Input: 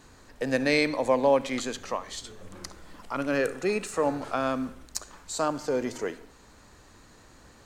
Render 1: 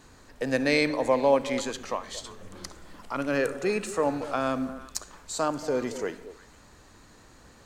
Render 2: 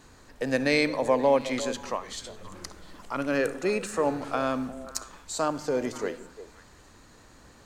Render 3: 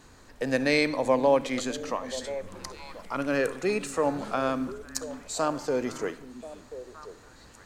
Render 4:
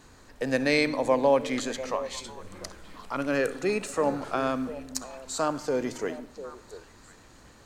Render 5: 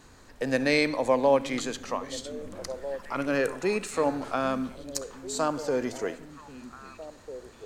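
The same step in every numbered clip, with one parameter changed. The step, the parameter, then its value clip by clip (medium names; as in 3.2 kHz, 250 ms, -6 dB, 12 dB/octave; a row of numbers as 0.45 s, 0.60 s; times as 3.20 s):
repeats whose band climbs or falls, time: 115 ms, 177 ms, 517 ms, 348 ms, 798 ms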